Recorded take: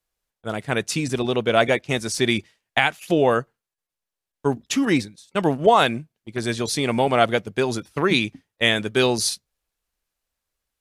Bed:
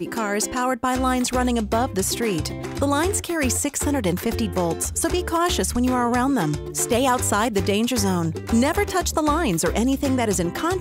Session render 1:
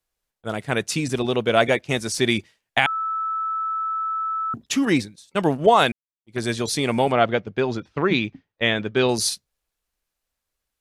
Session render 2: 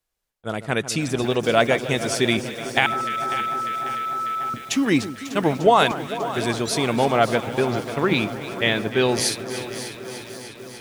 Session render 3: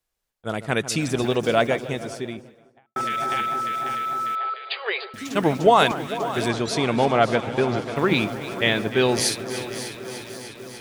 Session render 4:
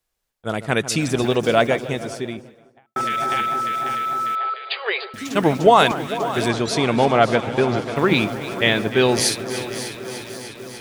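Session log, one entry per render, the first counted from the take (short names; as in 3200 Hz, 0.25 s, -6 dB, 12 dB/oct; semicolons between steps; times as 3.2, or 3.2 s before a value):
2.86–4.54 bleep 1310 Hz -22.5 dBFS; 5.92–6.35 fade in exponential; 7.12–9.09 air absorption 180 m
on a send: echo with dull and thin repeats by turns 0.149 s, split 1500 Hz, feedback 89%, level -13 dB; on the sum: lo-fi delay 0.544 s, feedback 55%, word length 6-bit, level -13 dB
1.13–2.96 studio fade out; 4.35–5.14 brick-wall FIR band-pass 380–4900 Hz; 6.48–7.96 air absorption 53 m
gain +3 dB; limiter -1 dBFS, peak gain reduction 1 dB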